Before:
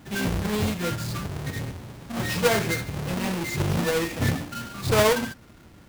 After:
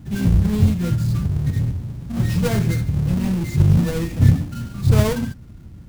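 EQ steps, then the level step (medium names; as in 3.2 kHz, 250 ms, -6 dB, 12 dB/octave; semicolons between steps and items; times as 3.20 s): tone controls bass +12 dB, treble +3 dB; bass shelf 310 Hz +9 dB; -6.5 dB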